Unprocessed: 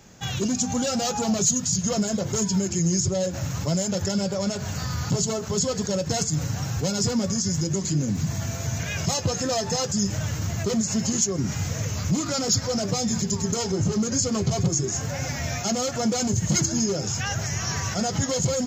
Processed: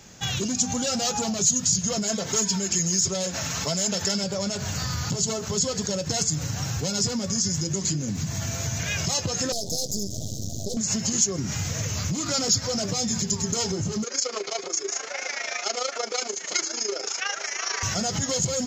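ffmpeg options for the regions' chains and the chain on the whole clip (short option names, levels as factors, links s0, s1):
-filter_complex "[0:a]asettb=1/sr,asplit=3[s0][s1][s2];[s0]atrim=end=2.034[s3];[s1]atrim=start=2.03:end=4.24,asetpts=PTS-STARTPTS,afade=t=in:d=0.004:c=qsin,afade=t=out:st=2.206:d=0.004:c=qsin,asplit=2[s4][s5];[s5]highpass=f=720:p=1,volume=2.51,asoftclip=type=tanh:threshold=0.224[s6];[s4][s6]amix=inputs=2:normalize=0,lowpass=f=7400:p=1,volume=0.501,aecho=1:1:4.5:0.41,atrim=end_sample=97461[s7];[s2]atrim=start=4.236[s8];[s3][s7]acrossfade=d=0.004:c1=hsin:c2=qsin[s9];[s9][s8]acrossfade=d=0.004:c1=qsin:c2=hsin,asettb=1/sr,asplit=3[s10][s11][s12];[s10]atrim=end=9.524[s13];[s11]atrim=start=9.52:end=10.77,asetpts=PTS-STARTPTS,afade=t=in:d=0.004:c=qsin,afade=t=out:st=1.246:d=0.004:c=qsin,aeval=exprs='max(val(0),0)':c=same,asuperstop=centerf=1600:order=12:qfactor=0.55[s14];[s12]atrim=start=10.766[s15];[s13][s14]acrossfade=d=0.004:c1=hsin:c2=qsin[s16];[s16][s15]acrossfade=d=0.004:c1=qsin:c2=hsin,asettb=1/sr,asplit=3[s17][s18][s19];[s17]atrim=end=14.044[s20];[s18]atrim=start=14.04:end=17.83,asetpts=PTS-STARTPTS,afade=t=in:d=0.004:c=qsin,afade=t=out:st=3.786:d=0.004:c=qsin,tremolo=f=27:d=0.71,highpass=f=410:w=0.5412,highpass=f=410:w=1.3066,equalizer=f=410:t=q:w=4:g=6,equalizer=f=1300:t=q:w=4:g=6,equalizer=f=2200:t=q:w=4:g=6,lowpass=f=6400:w=0.5412,lowpass=f=6400:w=1.3066[s21];[s19]atrim=start=17.826[s22];[s20][s21]acrossfade=d=0.004:c1=hsin:c2=qsin[s23];[s23][s22]acrossfade=d=0.004:c1=qsin:c2=hsin,highshelf=f=7500:g=-10,acompressor=threshold=0.0562:ratio=6,highshelf=f=2800:g=11"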